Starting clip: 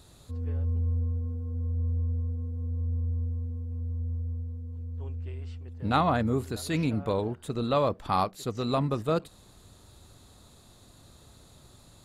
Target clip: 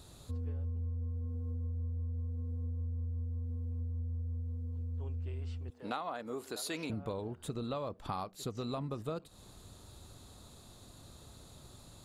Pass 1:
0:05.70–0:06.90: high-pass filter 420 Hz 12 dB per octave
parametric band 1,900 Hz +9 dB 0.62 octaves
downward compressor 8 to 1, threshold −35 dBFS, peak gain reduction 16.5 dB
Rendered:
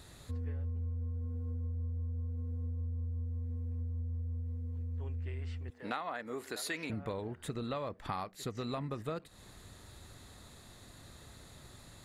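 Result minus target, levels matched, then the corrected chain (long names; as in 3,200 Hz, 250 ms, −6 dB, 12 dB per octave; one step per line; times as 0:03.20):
2,000 Hz band +5.0 dB
0:05.70–0:06.90: high-pass filter 420 Hz 12 dB per octave
parametric band 1,900 Hz −3 dB 0.62 octaves
downward compressor 8 to 1, threshold −35 dBFS, peak gain reduction 14.5 dB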